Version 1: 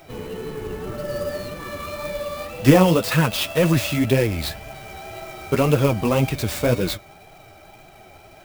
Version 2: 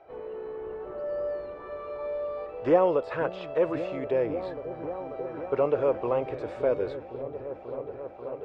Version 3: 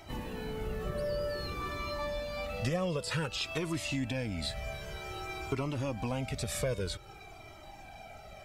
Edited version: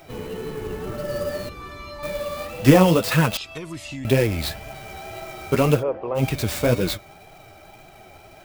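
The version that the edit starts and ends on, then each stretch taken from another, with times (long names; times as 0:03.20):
1
0:01.49–0:02.03: punch in from 3
0:03.37–0:04.05: punch in from 3
0:05.79–0:06.19: punch in from 2, crossfade 0.10 s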